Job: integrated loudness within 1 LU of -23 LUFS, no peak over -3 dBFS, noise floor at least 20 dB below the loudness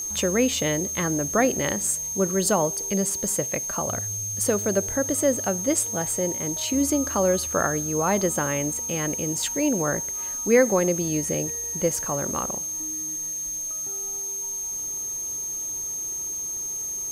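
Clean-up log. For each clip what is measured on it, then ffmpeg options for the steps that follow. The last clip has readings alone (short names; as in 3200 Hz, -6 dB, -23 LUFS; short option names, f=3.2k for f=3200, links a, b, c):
steady tone 6400 Hz; tone level -28 dBFS; noise floor -31 dBFS; noise floor target -44 dBFS; loudness -24.0 LUFS; peak -7.0 dBFS; loudness target -23.0 LUFS
-> -af "bandreject=f=6.4k:w=30"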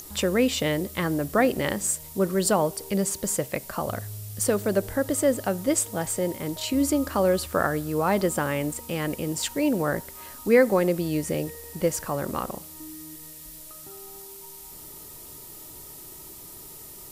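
steady tone none; noise floor -44 dBFS; noise floor target -46 dBFS
-> -af "afftdn=nr=6:nf=-44"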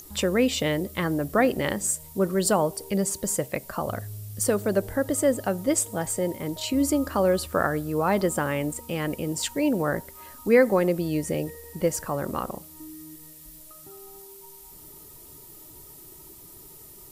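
noise floor -47 dBFS; loudness -25.5 LUFS; peak -7.0 dBFS; loudness target -23.0 LUFS
-> -af "volume=2.5dB"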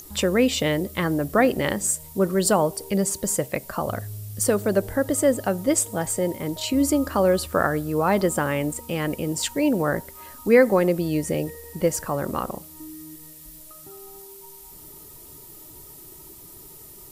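loudness -23.0 LUFS; peak -4.5 dBFS; noise floor -45 dBFS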